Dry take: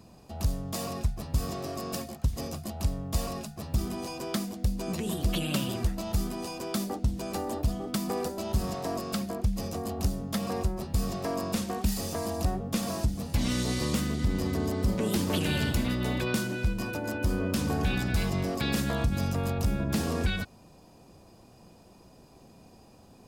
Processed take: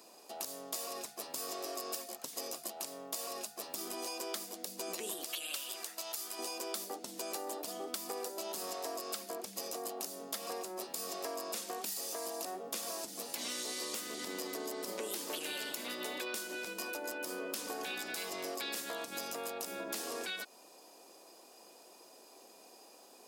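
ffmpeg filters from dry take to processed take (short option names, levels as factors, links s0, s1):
-filter_complex "[0:a]asettb=1/sr,asplit=3[s0][s1][s2];[s0]atrim=end=5.244[s3];[s1]atrim=start=5.24:end=6.39,asetpts=PTS-STARTPTS,afade=t=in:d=0.004:c=qsin,afade=t=out:st=1.146:d=0.004:c=qsin,highpass=f=1200:p=1[s4];[s2]atrim=start=6.386[s5];[s3][s4]acrossfade=d=0.004:c1=hsin:c2=qsin[s6];[s6][s5]acrossfade=d=0.004:c1=qsin:c2=hsin,highpass=f=350:w=0.5412,highpass=f=350:w=1.3066,highshelf=f=4300:g=9.5,acompressor=threshold=0.0158:ratio=6,volume=0.891"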